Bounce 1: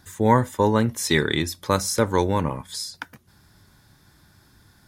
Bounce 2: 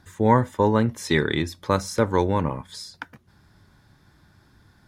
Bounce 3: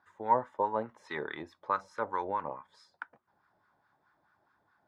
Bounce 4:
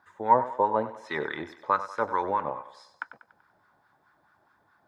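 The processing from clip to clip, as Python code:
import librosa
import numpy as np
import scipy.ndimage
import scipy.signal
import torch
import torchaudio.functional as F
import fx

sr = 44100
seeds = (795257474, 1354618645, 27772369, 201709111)

y1 = fx.lowpass(x, sr, hz=2800.0, slope=6)
y2 = fx.wah_lfo(y1, sr, hz=4.7, low_hz=650.0, high_hz=1300.0, q=2.5)
y2 = y2 * librosa.db_to_amplitude(-3.0)
y3 = fx.echo_thinned(y2, sr, ms=96, feedback_pct=49, hz=310.0, wet_db=-12.5)
y3 = y3 * librosa.db_to_amplitude(6.0)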